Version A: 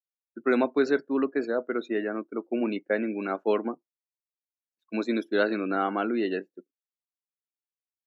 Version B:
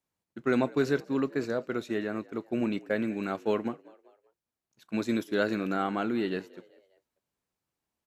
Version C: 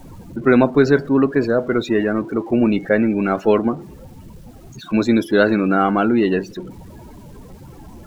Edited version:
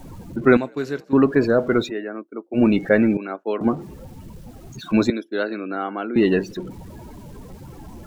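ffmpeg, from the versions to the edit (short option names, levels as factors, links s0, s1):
-filter_complex "[0:a]asplit=3[s0][s1][s2];[2:a]asplit=5[s3][s4][s5][s6][s7];[s3]atrim=end=0.572[s8];[1:a]atrim=start=0.568:end=1.132[s9];[s4]atrim=start=1.128:end=1.92[s10];[s0]atrim=start=1.86:end=2.59[s11];[s5]atrim=start=2.53:end=3.172[s12];[s1]atrim=start=3.168:end=3.612[s13];[s6]atrim=start=3.608:end=5.102[s14];[s2]atrim=start=5.098:end=6.162[s15];[s7]atrim=start=6.158[s16];[s8][s9]acrossfade=d=0.004:c1=hsin:c2=hsin[s17];[s17][s10]acrossfade=d=0.004:c1=hsin:c2=hsin[s18];[s18][s11]acrossfade=d=0.06:c1=tri:c2=tri[s19];[s19][s12]acrossfade=d=0.06:c1=tri:c2=tri[s20];[s20][s13]acrossfade=d=0.004:c1=hsin:c2=hsin[s21];[s21][s14]acrossfade=d=0.004:c1=hsin:c2=hsin[s22];[s22][s15]acrossfade=d=0.004:c1=hsin:c2=hsin[s23];[s23][s16]acrossfade=d=0.004:c1=hsin:c2=hsin"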